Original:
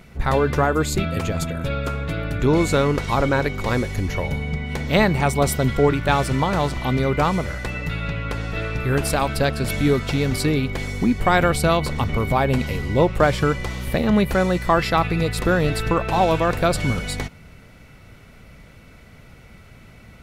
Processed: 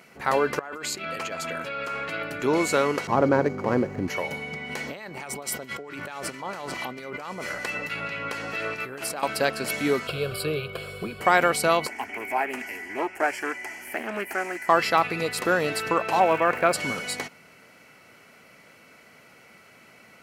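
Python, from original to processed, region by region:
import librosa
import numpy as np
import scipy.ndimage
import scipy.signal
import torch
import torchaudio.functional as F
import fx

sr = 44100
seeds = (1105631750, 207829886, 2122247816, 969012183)

y = fx.chain(x, sr, fx.lowpass(hz=3500.0, slope=6),
    fx.tilt_shelf(db=-4.5, hz=880.0),
    fx.over_compress(threshold_db=-29.0, ratio=-1.0), at=(0.59, 2.23))
y = fx.chain(y, sr, fx.median_filter(points=15),
    fx.highpass(hz=98.0, slope=12),
    fx.tilt_eq(slope=-4.0), at=(3.07, 4.08))
y = fx.chain(y, sr, fx.over_compress(threshold_db=-26.0, ratio=-1.0),
    fx.harmonic_tremolo(hz=4.5, depth_pct=50, crossover_hz=1400.0), at=(4.69, 9.23))
y = fx.chain(y, sr, fx.low_shelf(hz=230.0, db=11.5),
    fx.fixed_phaser(hz=1300.0, stages=8), at=(10.07, 11.21))
y = fx.chain(y, sr, fx.low_shelf(hz=350.0, db=-8.5),
    fx.fixed_phaser(hz=770.0, stages=8),
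    fx.doppler_dist(depth_ms=0.28), at=(11.87, 14.69))
y = fx.high_shelf_res(y, sr, hz=3200.0, db=-10.5, q=1.5, at=(16.19, 16.72), fade=0.02)
y = fx.dmg_crackle(y, sr, seeds[0], per_s=390.0, level_db=-37.0, at=(16.19, 16.72), fade=0.02)
y = scipy.signal.sosfilt(scipy.signal.butter(2, 240.0, 'highpass', fs=sr, output='sos'), y)
y = fx.low_shelf(y, sr, hz=400.0, db=-7.0)
y = fx.notch(y, sr, hz=3600.0, q=7.3)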